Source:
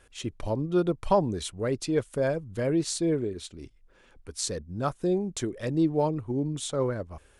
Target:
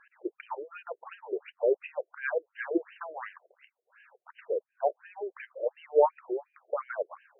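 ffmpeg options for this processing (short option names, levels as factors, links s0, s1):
-filter_complex "[0:a]asettb=1/sr,asplit=3[s0][s1][s2];[s0]atrim=end=2.984[s3];[s1]atrim=start=2.98:end=4.4,asetpts=PTS-STARTPTS,afade=t=in:d=0.004:c=qsin,afade=t=out:st=1.416:d=0.004:c=qsin,aeval=exprs='0.0211*(abs(mod(val(0)/0.0211+3,4)-2)-1)':c=same[s4];[s2]atrim=start=4.396[s5];[s3][s4]acrossfade=d=0.004:c1=hsin:c2=qsin[s6];[s6][s5]acrossfade=d=0.004:c1=qsin:c2=hsin,afftfilt=real='re*between(b*sr/1024,480*pow(2200/480,0.5+0.5*sin(2*PI*2.8*pts/sr))/1.41,480*pow(2200/480,0.5+0.5*sin(2*PI*2.8*pts/sr))*1.41)':imag='im*between(b*sr/1024,480*pow(2200/480,0.5+0.5*sin(2*PI*2.8*pts/sr))/1.41,480*pow(2200/480,0.5+0.5*sin(2*PI*2.8*pts/sr))*1.41)':win_size=1024:overlap=0.75,volume=2"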